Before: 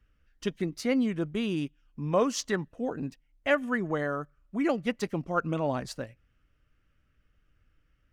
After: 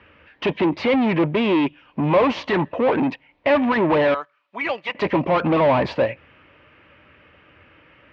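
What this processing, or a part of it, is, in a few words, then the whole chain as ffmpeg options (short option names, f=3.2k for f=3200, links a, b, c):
overdrive pedal into a guitar cabinet: -filter_complex "[0:a]asettb=1/sr,asplit=3[a][b][c];[a]atrim=end=4.144[d];[b]atrim=start=4.14:end=4.95,asetpts=PTS-STARTPTS,afade=t=in:d=0.004:c=qsin,afade=t=out:st=0.806:d=0.004:c=qsin,aderivative[e];[c]atrim=start=4.946[f];[d][e]acrossfade=d=0.004:c1=hsin:c2=qsin[g];[g][f]acrossfade=d=0.004:c1=qsin:c2=hsin,asplit=2[h][i];[i]highpass=f=720:p=1,volume=36dB,asoftclip=type=tanh:threshold=-12.5dB[j];[h][j]amix=inputs=2:normalize=0,lowpass=f=1.8k:p=1,volume=-6dB,highpass=79,equalizer=f=80:t=q:w=4:g=8,equalizer=f=340:t=q:w=4:g=3,equalizer=f=560:t=q:w=4:g=5,equalizer=f=950:t=q:w=4:g=8,equalizer=f=1.4k:t=q:w=4:g=-6,equalizer=f=2.4k:t=q:w=4:g=5,lowpass=f=3.7k:w=0.5412,lowpass=f=3.7k:w=1.3066"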